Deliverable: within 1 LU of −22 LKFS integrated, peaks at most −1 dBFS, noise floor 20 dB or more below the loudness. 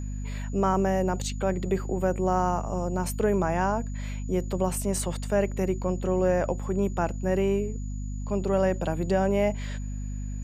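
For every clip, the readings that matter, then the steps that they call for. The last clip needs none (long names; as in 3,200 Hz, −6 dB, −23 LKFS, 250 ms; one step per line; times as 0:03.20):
mains hum 50 Hz; hum harmonics up to 250 Hz; level of the hum −30 dBFS; interfering tone 6,900 Hz; level of the tone −51 dBFS; integrated loudness −27.5 LKFS; sample peak −11.0 dBFS; target loudness −22.0 LKFS
→ mains-hum notches 50/100/150/200/250 Hz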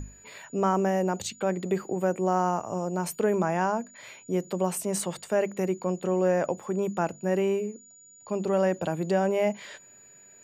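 mains hum none found; interfering tone 6,900 Hz; level of the tone −51 dBFS
→ notch filter 6,900 Hz, Q 30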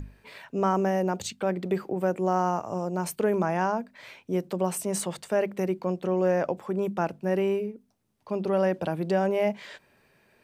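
interfering tone none found; integrated loudness −28.0 LKFS; sample peak −12.0 dBFS; target loudness −22.0 LKFS
→ level +6 dB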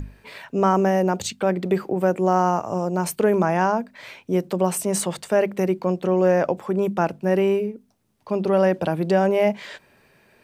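integrated loudness −22.0 LKFS; sample peak −6.0 dBFS; background noise floor −59 dBFS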